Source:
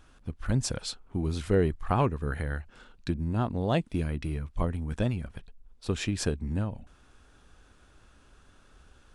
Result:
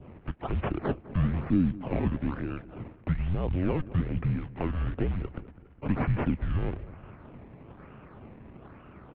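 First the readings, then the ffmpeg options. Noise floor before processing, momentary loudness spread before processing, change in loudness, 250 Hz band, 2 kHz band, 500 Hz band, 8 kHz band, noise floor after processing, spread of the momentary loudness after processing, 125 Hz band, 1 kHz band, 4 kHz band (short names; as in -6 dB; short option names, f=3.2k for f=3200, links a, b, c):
-59 dBFS, 12 LU, 0.0 dB, +2.5 dB, -2.0 dB, -4.0 dB, under -40 dB, -53 dBFS, 21 LU, +0.5 dB, -3.5 dB, under -10 dB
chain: -filter_complex "[0:a]asplit=2[a][b];[b]acompressor=threshold=-34dB:ratio=6,volume=0dB[c];[a][c]amix=inputs=2:normalize=0,alimiter=limit=-23dB:level=0:latency=1:release=25,acrusher=samples=19:mix=1:aa=0.000001:lfo=1:lforange=19:lforate=1.1,acompressor=mode=upward:threshold=-44dB:ratio=2.5,equalizer=f=260:t=o:w=2.8:g=12.5,acrusher=bits=6:mode=log:mix=0:aa=0.000001,asplit=2[d][e];[e]adelay=204,lowpass=f=1.5k:p=1,volume=-17dB,asplit=2[f][g];[g]adelay=204,lowpass=f=1.5k:p=1,volume=0.51,asplit=2[h][i];[i]adelay=204,lowpass=f=1.5k:p=1,volume=0.51,asplit=2[j][k];[k]adelay=204,lowpass=f=1.5k:p=1,volume=0.51[l];[d][f][h][j][l]amix=inputs=5:normalize=0,highpass=f=250:t=q:w=0.5412,highpass=f=250:t=q:w=1.307,lowpass=f=2.9k:t=q:w=0.5176,lowpass=f=2.9k:t=q:w=0.7071,lowpass=f=2.9k:t=q:w=1.932,afreqshift=-180,adynamicequalizer=threshold=0.00447:dfrequency=1400:dqfactor=0.71:tfrequency=1400:tqfactor=0.71:attack=5:release=100:ratio=0.375:range=2.5:mode=cutabove:tftype=bell"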